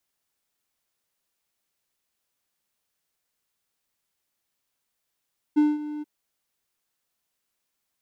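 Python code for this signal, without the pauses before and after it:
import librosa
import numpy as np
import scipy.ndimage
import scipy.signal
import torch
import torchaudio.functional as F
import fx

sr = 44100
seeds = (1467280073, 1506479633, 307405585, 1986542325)

y = fx.adsr_tone(sr, wave='triangle', hz=299.0, attack_ms=20.0, decay_ms=199.0, sustain_db=-15.5, held_s=0.46, release_ms=23.0, level_db=-12.5)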